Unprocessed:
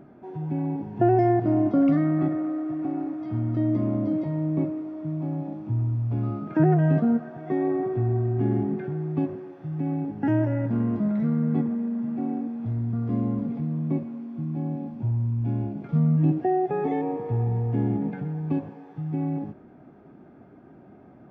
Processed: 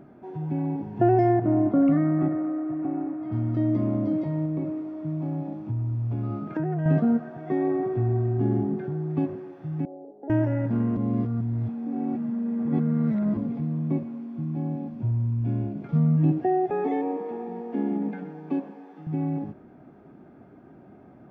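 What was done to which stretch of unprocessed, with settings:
1.39–3.32 s: low-pass 2.2 kHz
4.45–6.86 s: compression, threshold -24 dBFS
8.37–9.10 s: peaking EQ 2.2 kHz -6 dB 0.89 oct
9.85–10.30 s: Butterworth band-pass 520 Hz, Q 2
10.97–13.37 s: reverse
14.88–15.83 s: band-stop 850 Hz, Q 9.8
16.70–19.07 s: steep high-pass 180 Hz 72 dB/octave

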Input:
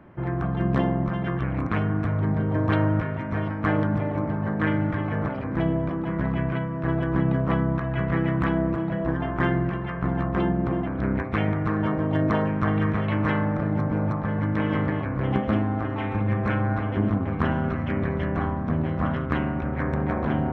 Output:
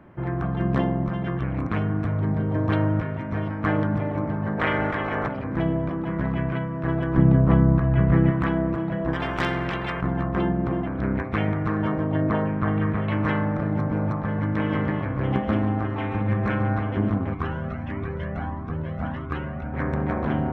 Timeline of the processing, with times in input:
0.84–3.53 s: peaking EQ 1.5 kHz -2.5 dB 1.8 oct
4.57–5.26 s: spectral peaks clipped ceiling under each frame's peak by 17 dB
7.17–8.31 s: tilt EQ -2.5 dB/octave
9.13–10.01 s: spectrum-flattening compressor 2:1
12.04–13.08 s: distance through air 230 m
14.66–16.83 s: delay 143 ms -11.5 dB
17.34–19.74 s: Shepard-style flanger rising 1.6 Hz

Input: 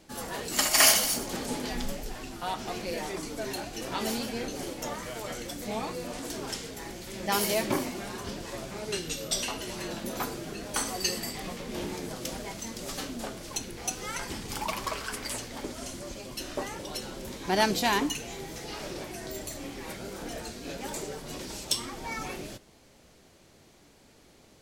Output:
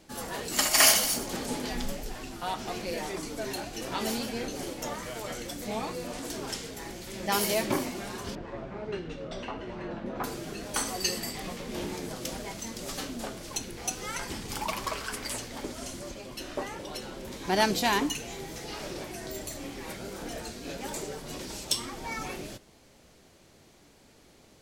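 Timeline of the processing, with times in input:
8.35–10.24 s: low-pass 1.7 kHz
16.11–17.32 s: tone controls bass -2 dB, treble -5 dB

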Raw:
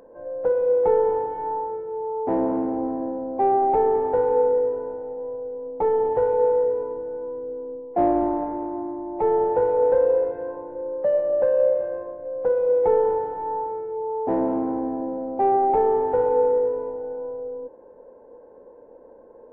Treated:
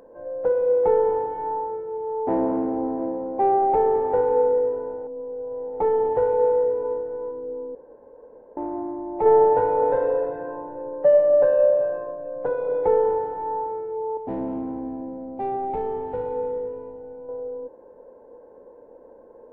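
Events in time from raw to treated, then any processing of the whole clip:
1.26–4.21 s: delay 709 ms -15 dB
5.07–5.80 s: reverse
6.49–6.96 s: echo throw 350 ms, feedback 30%, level -11 dB
7.75–8.57 s: room tone
9.25–12.86 s: comb 6.9 ms, depth 92%
14.17–17.29 s: high-order bell 760 Hz -8 dB 2.9 oct

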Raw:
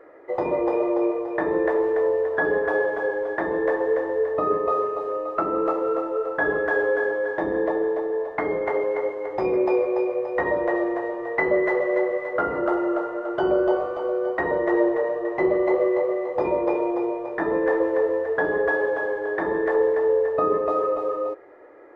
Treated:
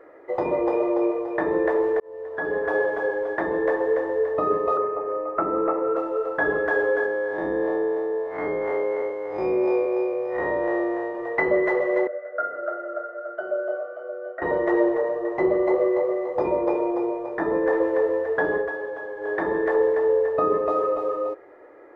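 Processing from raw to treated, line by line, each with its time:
2.00–2.80 s: fade in
4.77–5.96 s: steep low-pass 2.4 kHz 48 dB/octave
7.06–11.15 s: spectral blur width 106 ms
12.07–14.42 s: two resonant band-passes 940 Hz, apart 1.2 oct
14.96–17.73 s: peaking EQ 2.8 kHz -4 dB 1.3 oct
18.55–19.30 s: dip -8 dB, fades 0.14 s

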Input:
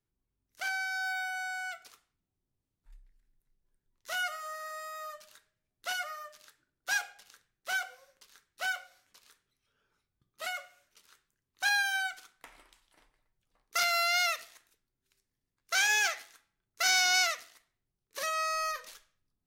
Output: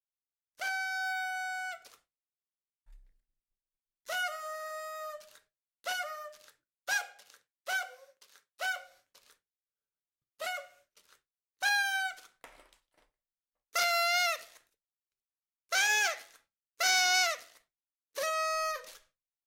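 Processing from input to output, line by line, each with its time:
0.77–1.66 s: small resonant body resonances 230/3500 Hz, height 14 dB, ringing for 60 ms
6.93–8.74 s: high-pass 190 Hz -> 400 Hz 6 dB/octave
whole clip: expander -60 dBFS; peaking EQ 550 Hz +8 dB 0.6 oct; trim -1 dB

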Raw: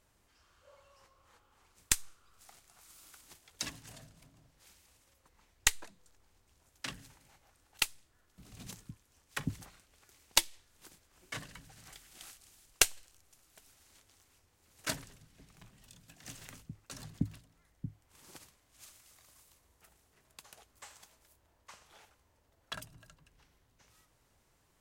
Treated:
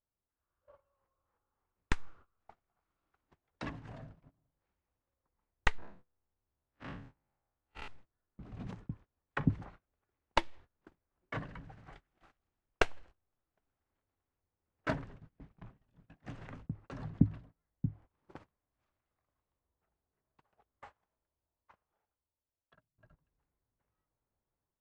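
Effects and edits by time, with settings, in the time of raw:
5.78–7.88 s: spectral blur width 117 ms
19.38–22.98 s: fade out equal-power, to -21.5 dB
whole clip: low-pass 1.3 kHz 12 dB/octave; gate -59 dBFS, range -23 dB; level rider gain up to 7 dB

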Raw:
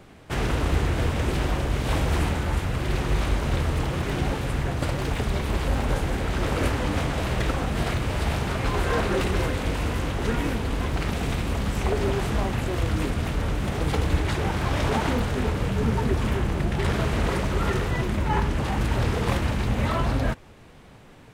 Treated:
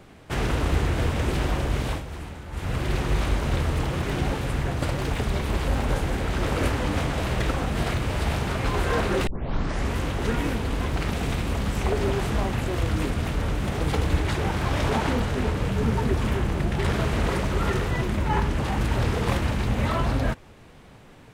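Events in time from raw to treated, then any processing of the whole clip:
1.82–2.72 s: dip -12.5 dB, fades 0.21 s
9.27 s: tape start 0.69 s
14.94–15.65 s: loudspeaker Doppler distortion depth 0.2 ms

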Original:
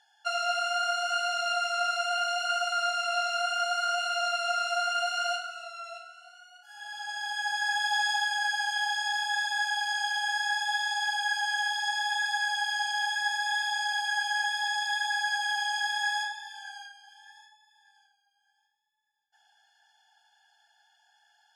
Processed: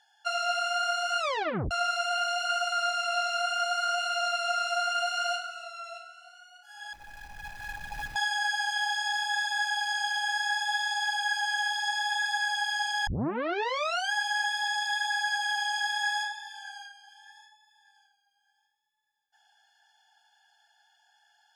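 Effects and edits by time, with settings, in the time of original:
1.19 s: tape stop 0.52 s
6.93–8.16 s: median filter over 41 samples
13.07 s: tape start 1.05 s

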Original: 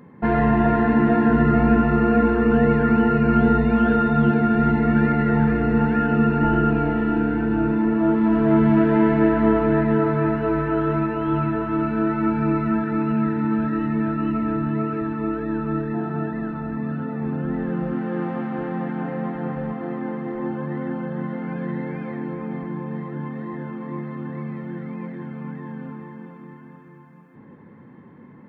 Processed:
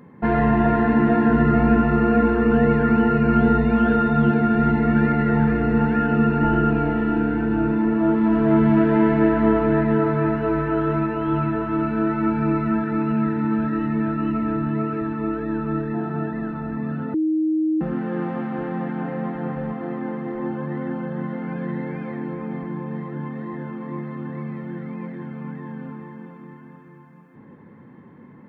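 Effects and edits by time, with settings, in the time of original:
17.14–17.81 s: bleep 314 Hz -17.5 dBFS

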